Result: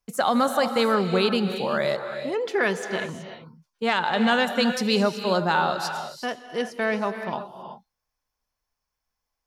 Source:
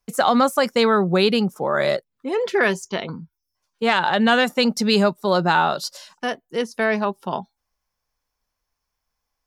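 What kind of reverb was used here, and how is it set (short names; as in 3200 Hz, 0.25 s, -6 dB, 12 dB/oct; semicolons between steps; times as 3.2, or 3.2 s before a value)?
non-linear reverb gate 0.4 s rising, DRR 7.5 dB; gain -4.5 dB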